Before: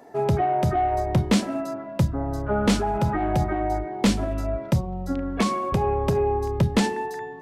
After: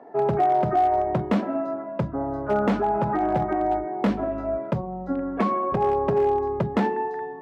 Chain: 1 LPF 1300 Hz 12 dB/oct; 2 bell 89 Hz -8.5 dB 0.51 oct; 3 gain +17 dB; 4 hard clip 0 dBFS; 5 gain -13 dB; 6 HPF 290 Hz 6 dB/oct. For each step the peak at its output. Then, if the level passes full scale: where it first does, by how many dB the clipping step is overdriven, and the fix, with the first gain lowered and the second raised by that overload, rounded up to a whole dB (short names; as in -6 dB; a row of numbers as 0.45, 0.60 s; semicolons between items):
-12.5, -11.5, +5.5, 0.0, -13.0, -9.5 dBFS; step 3, 5.5 dB; step 3 +11 dB, step 5 -7 dB